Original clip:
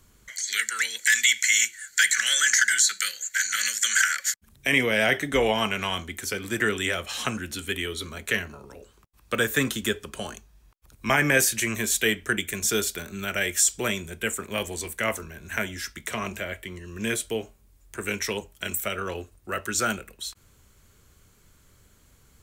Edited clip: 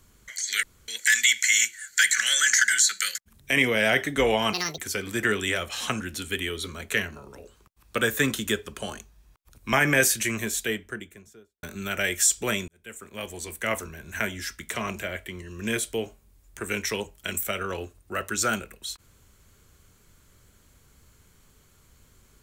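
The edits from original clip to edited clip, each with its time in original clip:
0.63–0.88 s: room tone
3.15–4.31 s: delete
5.69–6.15 s: speed 184%
11.49–13.00 s: studio fade out
14.05–15.19 s: fade in

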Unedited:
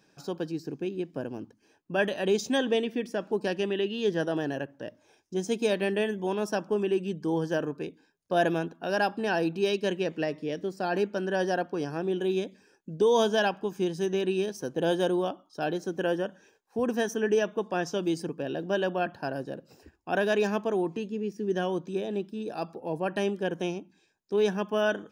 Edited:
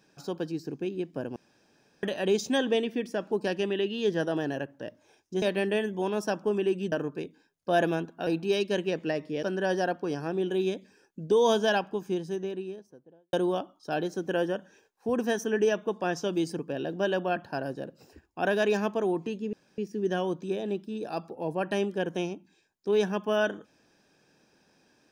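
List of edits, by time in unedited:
1.36–2.03 s: room tone
5.42–5.67 s: delete
7.17–7.55 s: delete
8.90–9.40 s: delete
10.56–11.13 s: delete
13.37–15.03 s: studio fade out
21.23 s: insert room tone 0.25 s

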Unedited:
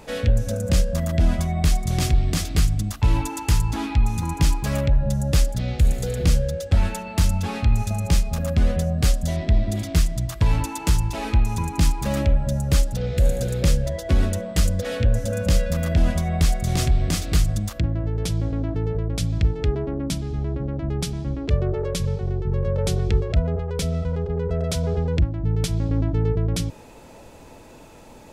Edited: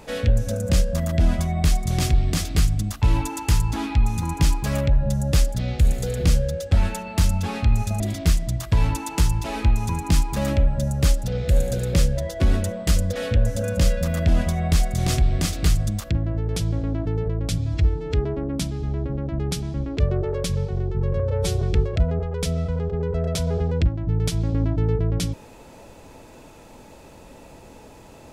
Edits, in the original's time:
8.00–9.69 s: delete
19.27–19.64 s: stretch 1.5×
22.70–22.98 s: stretch 1.5×

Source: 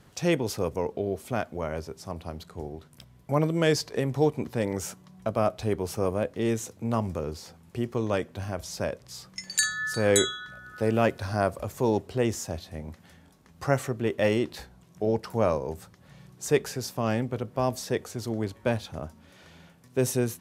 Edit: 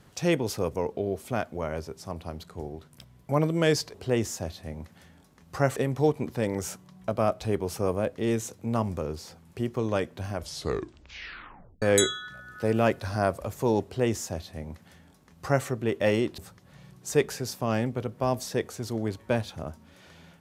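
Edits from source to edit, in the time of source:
8.53 s: tape stop 1.47 s
12.02–13.84 s: copy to 3.94 s
14.56–15.74 s: delete

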